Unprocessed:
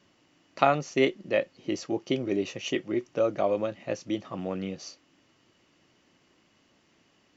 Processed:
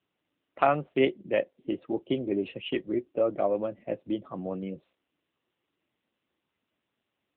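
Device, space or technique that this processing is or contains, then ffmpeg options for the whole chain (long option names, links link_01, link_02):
mobile call with aggressive noise cancelling: -filter_complex "[0:a]asplit=3[link_01][link_02][link_03];[link_01]afade=type=out:start_time=3.44:duration=0.02[link_04];[link_02]bandreject=frequency=4300:width=10,afade=type=in:start_time=3.44:duration=0.02,afade=type=out:start_time=4.52:duration=0.02[link_05];[link_03]afade=type=in:start_time=4.52:duration=0.02[link_06];[link_04][link_05][link_06]amix=inputs=3:normalize=0,highpass=110,afftdn=noise_reduction=16:noise_floor=-42" -ar 8000 -c:a libopencore_amrnb -b:a 7950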